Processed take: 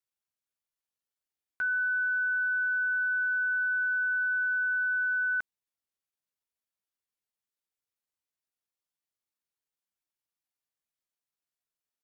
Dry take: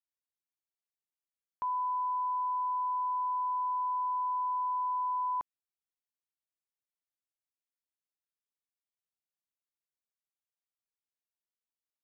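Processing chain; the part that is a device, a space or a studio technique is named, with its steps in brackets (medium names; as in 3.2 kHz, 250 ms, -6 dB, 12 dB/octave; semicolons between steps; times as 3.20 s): chipmunk voice (pitch shift +7 st); trim +3.5 dB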